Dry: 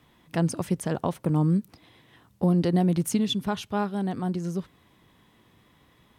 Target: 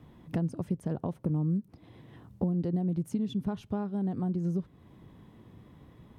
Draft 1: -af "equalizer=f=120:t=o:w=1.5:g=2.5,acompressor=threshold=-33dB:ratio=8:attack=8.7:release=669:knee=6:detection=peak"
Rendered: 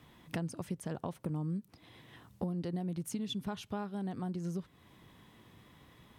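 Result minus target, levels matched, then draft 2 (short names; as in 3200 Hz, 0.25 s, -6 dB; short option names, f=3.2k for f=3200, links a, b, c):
1000 Hz band +5.5 dB
-af "equalizer=f=120:t=o:w=1.5:g=2.5,acompressor=threshold=-33dB:ratio=8:attack=8.7:release=669:knee=6:detection=peak,tiltshelf=f=960:g=8"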